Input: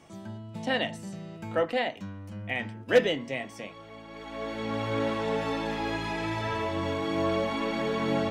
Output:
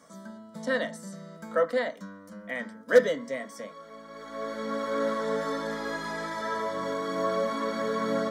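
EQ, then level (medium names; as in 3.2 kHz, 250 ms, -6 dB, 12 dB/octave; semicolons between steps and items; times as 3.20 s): bass shelf 60 Hz -7.5 dB; bass shelf 190 Hz -11 dB; static phaser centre 530 Hz, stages 8; +4.5 dB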